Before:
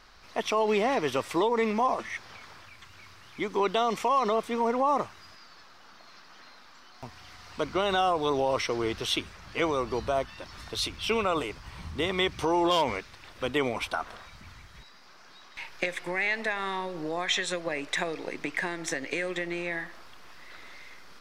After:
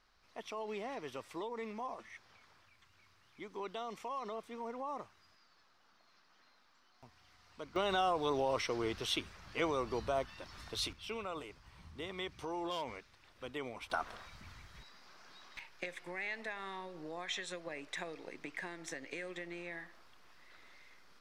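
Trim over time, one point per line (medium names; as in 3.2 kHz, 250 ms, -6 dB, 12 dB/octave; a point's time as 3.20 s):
-16.5 dB
from 7.76 s -7 dB
from 10.93 s -15 dB
from 13.90 s -5 dB
from 15.59 s -12.5 dB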